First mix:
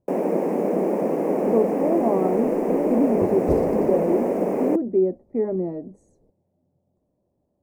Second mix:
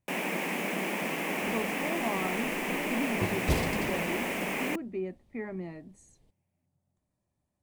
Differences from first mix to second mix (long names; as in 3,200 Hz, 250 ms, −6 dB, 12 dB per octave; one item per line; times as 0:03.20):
speech −5.0 dB
first sound −4.0 dB
master: remove drawn EQ curve 120 Hz 0 dB, 490 Hz +13 dB, 3,200 Hz −26 dB, 5,100 Hz −14 dB